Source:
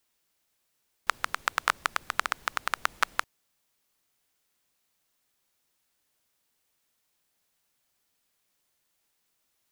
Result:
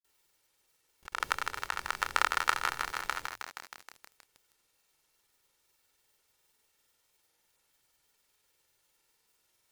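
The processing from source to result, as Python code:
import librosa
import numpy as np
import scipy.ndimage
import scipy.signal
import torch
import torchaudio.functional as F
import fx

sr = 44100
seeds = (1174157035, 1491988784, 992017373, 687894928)

y = fx.hum_notches(x, sr, base_hz=50, count=2)
y = y + 0.44 * np.pad(y, (int(2.2 * sr / 1000.0), 0))[:len(y)]
y = fx.over_compress(y, sr, threshold_db=-28.0, ratio=-0.5)
y = fx.granulator(y, sr, seeds[0], grain_ms=100.0, per_s=20.0, spray_ms=100.0, spread_st=0)
y = fx.echo_crushed(y, sr, ms=158, feedback_pct=80, bits=7, wet_db=-5.5)
y = F.gain(torch.from_numpy(y), 1.0).numpy()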